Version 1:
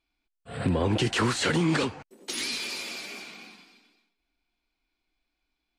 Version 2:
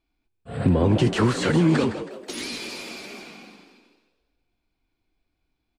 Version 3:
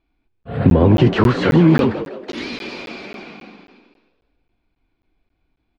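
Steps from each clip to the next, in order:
tilt shelving filter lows +5 dB, about 920 Hz; echo with shifted repeats 161 ms, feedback 42%, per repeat +67 Hz, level −12 dB; level +2 dB
high-frequency loss of the air 230 metres; regular buffer underruns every 0.27 s, samples 512, zero, from 0:00.43; level +7.5 dB

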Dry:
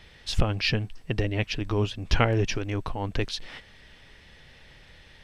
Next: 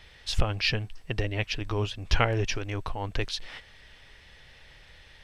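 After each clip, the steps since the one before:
parametric band 220 Hz −7 dB 1.8 octaves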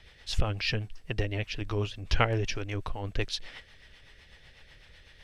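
rotating-speaker cabinet horn 8 Hz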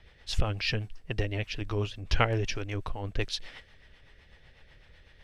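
one half of a high-frequency compander decoder only

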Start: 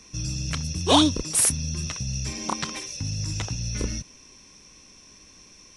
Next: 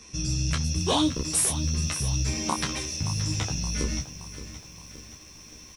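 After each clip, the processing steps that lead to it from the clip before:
downward compressor 4 to 1, threshold −24 dBFS, peak gain reduction 10 dB
on a send: ambience of single reflections 13 ms −3.5 dB, 29 ms −7 dB
on the sum: feedback echo at a low word length 572 ms, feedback 55%, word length 8 bits, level −13 dB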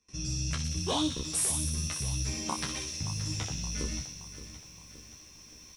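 noise gate with hold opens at −38 dBFS
on a send: delay with a high-pass on its return 61 ms, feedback 70%, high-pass 3,000 Hz, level −4 dB
on the sum: level −6.5 dB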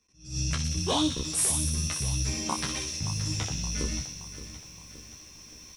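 level that may rise only so fast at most 140 dB per second
level +3.5 dB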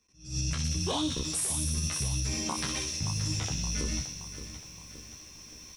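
brickwall limiter −21 dBFS, peak gain reduction 7 dB

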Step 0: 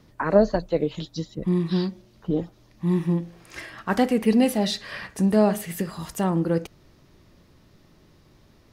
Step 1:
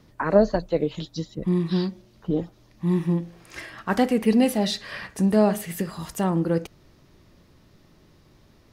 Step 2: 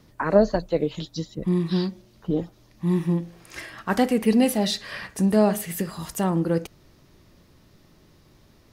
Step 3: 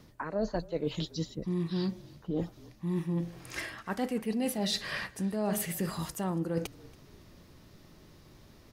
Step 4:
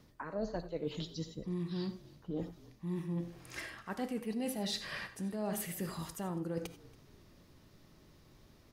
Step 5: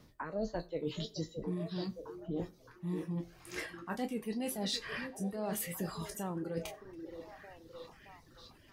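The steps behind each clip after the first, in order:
no processing that can be heard
high-shelf EQ 6,500 Hz +5 dB
reversed playback; downward compressor 6 to 1, threshold −29 dBFS, peak gain reduction 17.5 dB; reversed playback; echo with shifted repeats 280 ms, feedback 32%, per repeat −44 Hz, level −22.5 dB
reverb whose tail is shaped and stops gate 110 ms rising, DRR 11.5 dB; level −6 dB
peak hold with a decay on every bin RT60 0.30 s; echo through a band-pass that steps 619 ms, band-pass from 360 Hz, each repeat 0.7 octaves, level −5.5 dB; reverb reduction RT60 0.89 s; level +1 dB

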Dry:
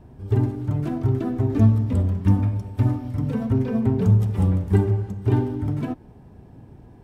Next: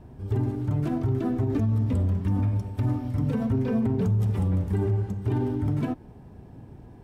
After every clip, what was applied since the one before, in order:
brickwall limiter −17.5 dBFS, peak gain reduction 11.5 dB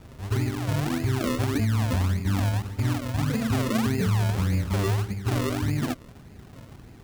sample-and-hold swept by an LFO 38×, swing 100% 1.7 Hz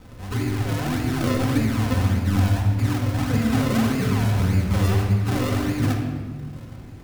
rectangular room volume 1,800 cubic metres, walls mixed, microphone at 2 metres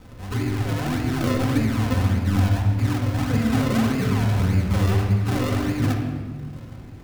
running median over 5 samples

